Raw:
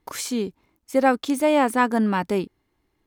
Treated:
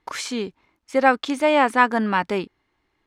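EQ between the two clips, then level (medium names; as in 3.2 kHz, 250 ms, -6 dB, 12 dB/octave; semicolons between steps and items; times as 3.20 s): distance through air 60 m; tilt shelf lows -8 dB, about 890 Hz; treble shelf 3 kHz -11 dB; +4.5 dB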